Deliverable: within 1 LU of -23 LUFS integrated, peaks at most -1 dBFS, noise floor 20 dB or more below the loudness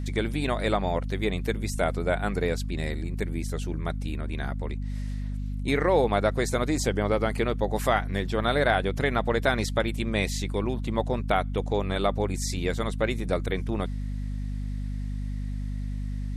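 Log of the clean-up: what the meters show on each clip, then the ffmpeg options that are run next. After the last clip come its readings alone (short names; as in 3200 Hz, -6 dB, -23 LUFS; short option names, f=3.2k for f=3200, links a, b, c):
hum 50 Hz; harmonics up to 250 Hz; hum level -28 dBFS; loudness -28.0 LUFS; peak -9.5 dBFS; loudness target -23.0 LUFS
-> -af "bandreject=f=50:t=h:w=6,bandreject=f=100:t=h:w=6,bandreject=f=150:t=h:w=6,bandreject=f=200:t=h:w=6,bandreject=f=250:t=h:w=6"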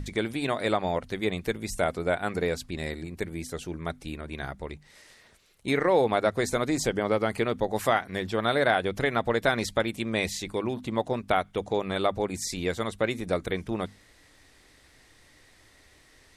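hum none; loudness -28.5 LUFS; peak -9.5 dBFS; loudness target -23.0 LUFS
-> -af "volume=5.5dB"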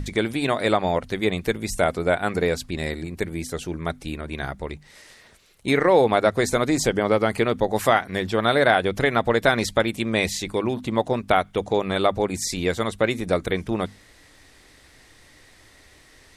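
loudness -23.0 LUFS; peak -4.0 dBFS; noise floor -53 dBFS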